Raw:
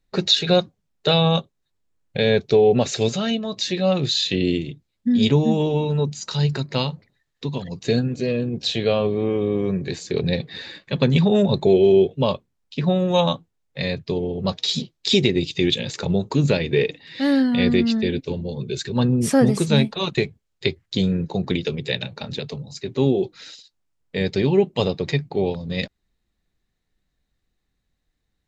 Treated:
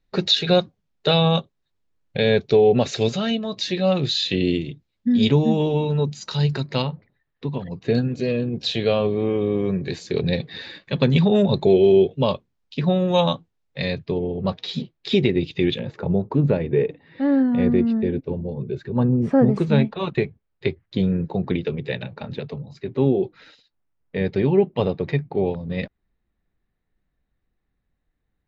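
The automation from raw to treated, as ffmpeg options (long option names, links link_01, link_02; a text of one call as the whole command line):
ffmpeg -i in.wav -af "asetnsamples=nb_out_samples=441:pad=0,asendcmd='6.82 lowpass f 2200;7.95 lowpass f 5300;14.06 lowpass f 2500;15.79 lowpass f 1200;19.56 lowpass f 2100',lowpass=5100" out.wav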